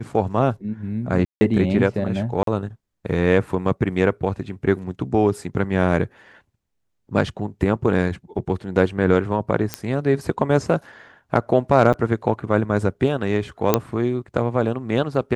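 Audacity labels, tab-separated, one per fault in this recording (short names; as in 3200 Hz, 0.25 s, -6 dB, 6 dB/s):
1.250000	1.410000	gap 0.16 s
2.430000	2.470000	gap 43 ms
9.740000	9.740000	pop -7 dBFS
11.930000	11.940000	gap 7.4 ms
13.740000	13.740000	pop -1 dBFS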